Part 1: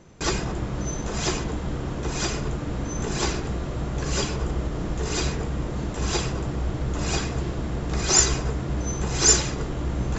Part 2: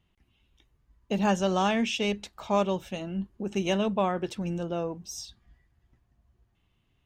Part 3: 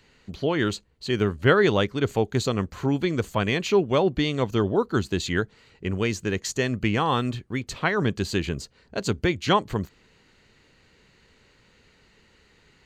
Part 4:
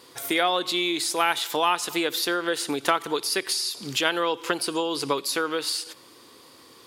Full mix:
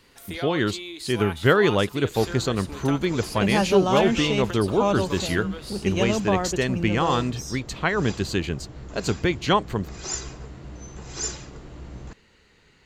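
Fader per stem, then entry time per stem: -12.5 dB, +2.0 dB, +0.5 dB, -11.5 dB; 1.95 s, 2.30 s, 0.00 s, 0.00 s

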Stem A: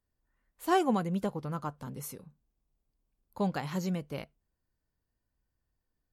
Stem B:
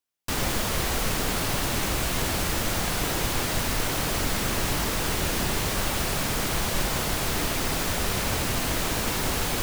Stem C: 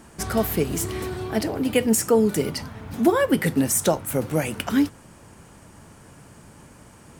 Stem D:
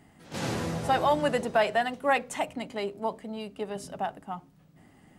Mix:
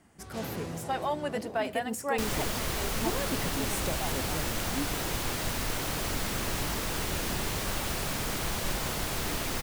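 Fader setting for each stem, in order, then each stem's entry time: mute, -5.5 dB, -16.0 dB, -7.0 dB; mute, 1.90 s, 0.00 s, 0.00 s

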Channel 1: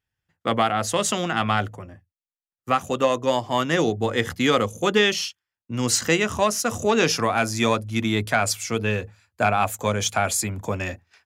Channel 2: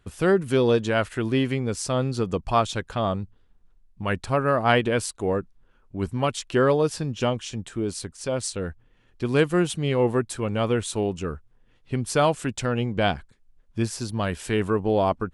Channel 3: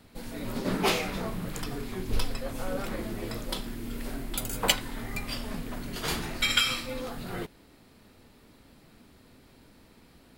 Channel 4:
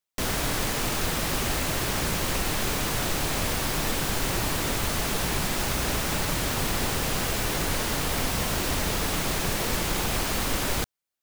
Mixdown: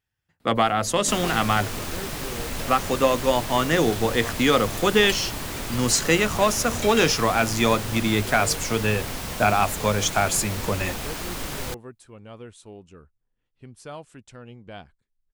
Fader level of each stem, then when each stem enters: +0.5 dB, -18.0 dB, -8.0 dB, -5.0 dB; 0.00 s, 1.70 s, 0.40 s, 0.90 s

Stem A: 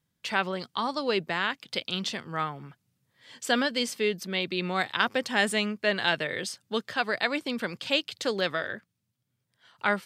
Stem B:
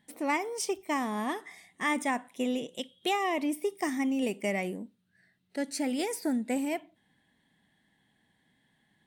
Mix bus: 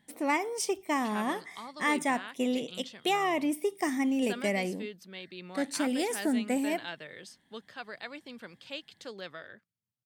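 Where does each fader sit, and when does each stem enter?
-14.5 dB, +1.0 dB; 0.80 s, 0.00 s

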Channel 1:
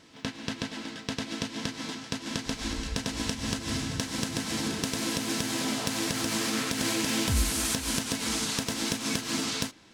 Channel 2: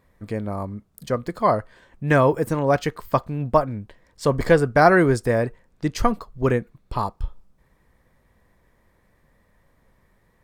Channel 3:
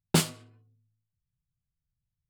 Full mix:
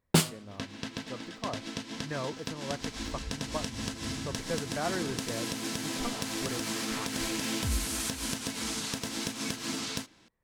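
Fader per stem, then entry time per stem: -4.5 dB, -19.0 dB, 0.0 dB; 0.35 s, 0.00 s, 0.00 s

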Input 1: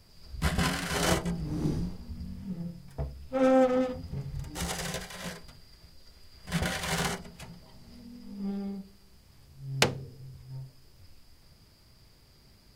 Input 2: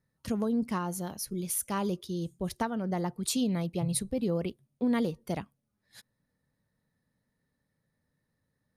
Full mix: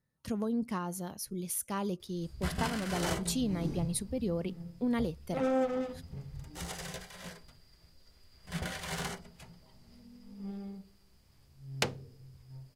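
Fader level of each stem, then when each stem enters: -7.0 dB, -3.5 dB; 2.00 s, 0.00 s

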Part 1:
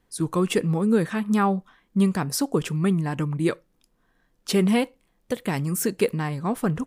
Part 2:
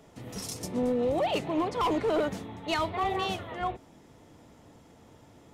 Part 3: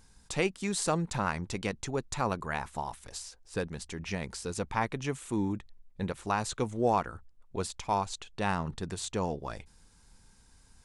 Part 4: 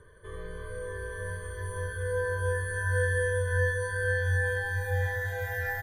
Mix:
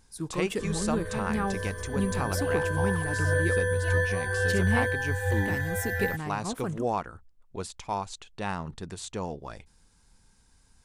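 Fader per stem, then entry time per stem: -9.0 dB, -14.5 dB, -2.0 dB, +1.5 dB; 0.00 s, 1.15 s, 0.00 s, 0.35 s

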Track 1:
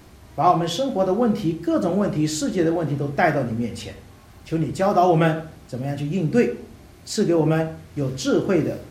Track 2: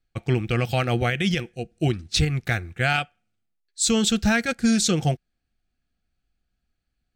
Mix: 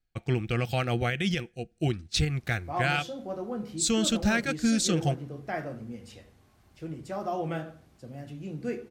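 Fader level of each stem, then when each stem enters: -15.0 dB, -5.0 dB; 2.30 s, 0.00 s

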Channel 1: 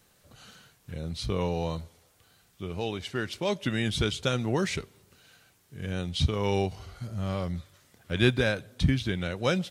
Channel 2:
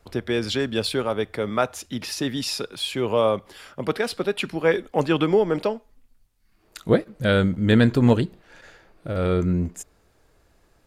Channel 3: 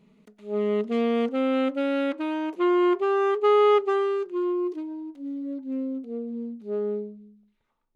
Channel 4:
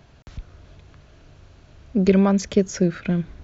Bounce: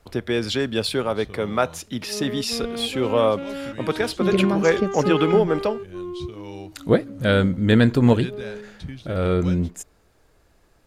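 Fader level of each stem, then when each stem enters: -11.0 dB, +1.0 dB, -6.5 dB, -4.5 dB; 0.00 s, 0.00 s, 1.60 s, 2.25 s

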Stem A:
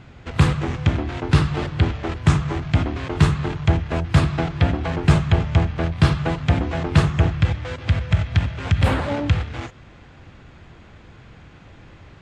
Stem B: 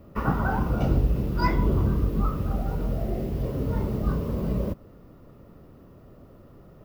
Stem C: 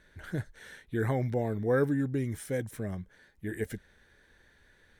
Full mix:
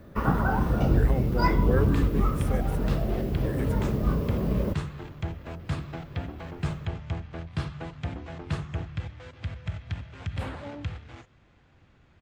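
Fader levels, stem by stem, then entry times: -15.0 dB, +0.5 dB, -2.0 dB; 1.55 s, 0.00 s, 0.00 s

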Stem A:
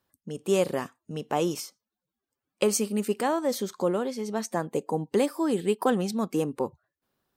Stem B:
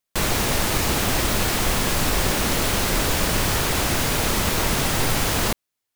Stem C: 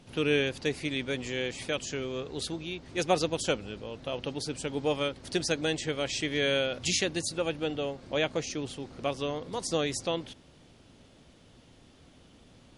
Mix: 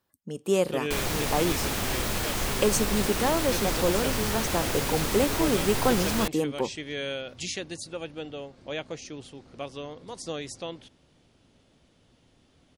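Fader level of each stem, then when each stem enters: 0.0 dB, -7.5 dB, -5.5 dB; 0.00 s, 0.75 s, 0.55 s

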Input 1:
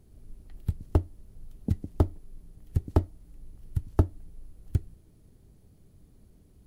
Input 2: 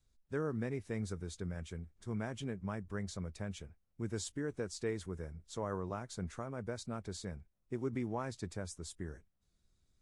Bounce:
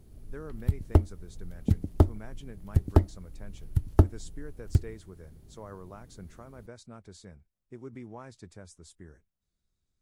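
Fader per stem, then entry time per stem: +3.0 dB, -6.0 dB; 0.00 s, 0.00 s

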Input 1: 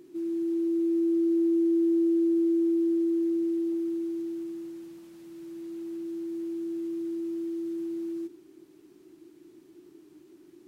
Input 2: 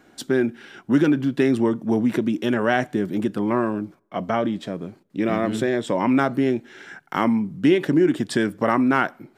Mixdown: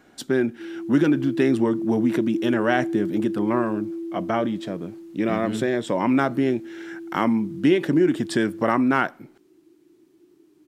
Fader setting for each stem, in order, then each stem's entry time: -3.5 dB, -1.0 dB; 0.45 s, 0.00 s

